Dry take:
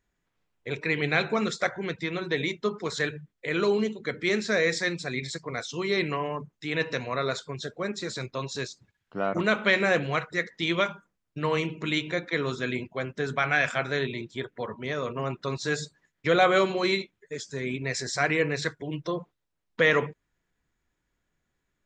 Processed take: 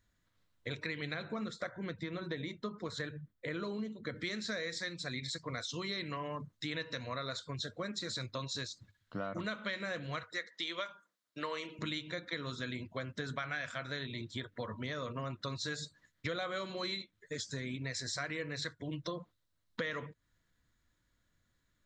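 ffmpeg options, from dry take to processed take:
-filter_complex "[0:a]asettb=1/sr,asplit=3[s0][s1][s2];[s0]atrim=end=1.144[s3];[s1]atrim=start=1.14:end=4.16,asetpts=PTS-STARTPTS,afade=t=in:d=0.004:c=qsin,afade=t=out:st=3.016:d=0.004:c=qsin,equalizer=f=5400:t=o:w=2.9:g=-10[s4];[s2]atrim=start=4.156[s5];[s3][s4]acrossfade=d=0.004:c1=hsin:c2=qsin[s6];[s6][s5]acrossfade=d=0.004:c1=qsin:c2=hsin,asettb=1/sr,asplit=3[s7][s8][s9];[s7]atrim=end=10.234[s10];[s8]atrim=start=10.23:end=11.79,asetpts=PTS-STARTPTS,afade=t=in:d=0.004:c=qsin,afade=t=out:st=1.556:d=0.004:c=qsin,highpass=410[s11];[s9]atrim=start=11.786[s12];[s10][s11]acrossfade=d=0.004:c1=hsin:c2=qsin[s13];[s13][s12]acrossfade=d=0.004:c1=qsin:c2=hsin,equalizer=f=100:t=o:w=0.33:g=8,equalizer=f=160:t=o:w=0.33:g=-3,equalizer=f=400:t=o:w=0.33:g=-10,equalizer=f=800:t=o:w=0.33:g=-9,equalizer=f=2500:t=o:w=0.33:g=-6,equalizer=f=4000:t=o:w=0.33:g=6,acompressor=threshold=0.0126:ratio=6,volume=1.19"

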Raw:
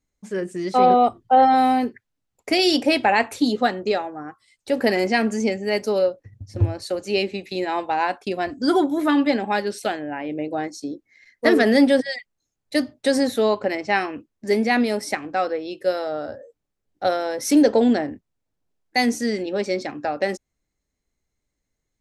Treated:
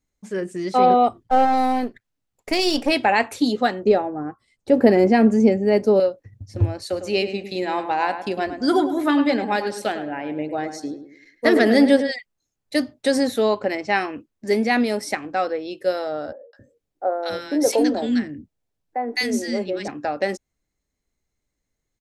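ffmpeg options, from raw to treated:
-filter_complex "[0:a]asplit=3[s0][s1][s2];[s0]afade=t=out:st=1.23:d=0.02[s3];[s1]aeval=exprs='if(lt(val(0),0),0.447*val(0),val(0))':c=same,afade=t=in:st=1.23:d=0.02,afade=t=out:st=2.9:d=0.02[s4];[s2]afade=t=in:st=2.9:d=0.02[s5];[s3][s4][s5]amix=inputs=3:normalize=0,asettb=1/sr,asplit=3[s6][s7][s8];[s6]atrim=end=3.854[s9];[s7]atrim=start=3.85:end=6,asetpts=PTS-STARTPTS,afade=t=in:d=0.004:c=qsin,afade=t=out:st=2.146:d=0.004:c=qsin,tiltshelf=f=1100:g=8.5[s10];[s8]atrim=start=5.996[s11];[s9][s10]acrossfade=d=0.004:c1=hsin:c2=qsin[s12];[s12][s11]acrossfade=d=0.004:c1=qsin:c2=hsin,asplit=3[s13][s14][s15];[s13]afade=t=out:st=6.91:d=0.02[s16];[s14]asplit=2[s17][s18];[s18]adelay=105,lowpass=f=2100:p=1,volume=0.355,asplit=2[s19][s20];[s20]adelay=105,lowpass=f=2100:p=1,volume=0.37,asplit=2[s21][s22];[s22]adelay=105,lowpass=f=2100:p=1,volume=0.37,asplit=2[s23][s24];[s24]adelay=105,lowpass=f=2100:p=1,volume=0.37[s25];[s17][s19][s21][s23][s25]amix=inputs=5:normalize=0,afade=t=in:st=6.91:d=0.02,afade=t=out:st=12.1:d=0.02[s26];[s15]afade=t=in:st=12.1:d=0.02[s27];[s16][s26][s27]amix=inputs=3:normalize=0,asettb=1/sr,asplit=3[s28][s29][s30];[s28]atrim=end=16.324[s31];[s29]atrim=start=16.32:end=19.88,asetpts=PTS-STARTPTS,afade=t=in:d=0.004:c=qsin,afade=t=out:st=3.556:d=0.004:c=qsin,acrossover=split=310|1200[s32][s33][s34];[s34]adelay=210[s35];[s32]adelay=270[s36];[s36][s33][s35]amix=inputs=3:normalize=0,atrim=end_sample=156996[s37];[s30]atrim=start=19.876[s38];[s31][s37]acrossfade=d=0.004:c1=hsin:c2=qsin[s39];[s39][s38]acrossfade=d=0.004:c1=qsin:c2=hsin"

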